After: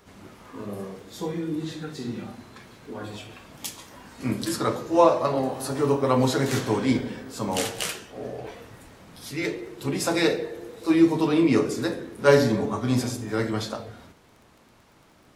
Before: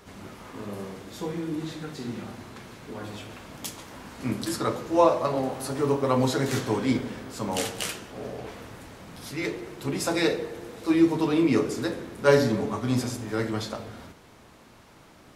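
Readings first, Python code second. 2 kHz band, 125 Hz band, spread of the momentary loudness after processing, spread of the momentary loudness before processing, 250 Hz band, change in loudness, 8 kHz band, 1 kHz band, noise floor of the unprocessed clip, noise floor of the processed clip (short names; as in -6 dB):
+2.0 dB, +2.0 dB, 19 LU, 20 LU, +2.0 dB, +2.5 dB, +2.0 dB, +2.0 dB, -53 dBFS, -57 dBFS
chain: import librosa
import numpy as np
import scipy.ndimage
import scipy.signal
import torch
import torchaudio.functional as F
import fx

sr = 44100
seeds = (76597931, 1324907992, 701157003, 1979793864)

y = fx.noise_reduce_blind(x, sr, reduce_db=6)
y = fx.dmg_crackle(y, sr, seeds[0], per_s=16.0, level_db=-46.0)
y = y * 10.0 ** (2.0 / 20.0)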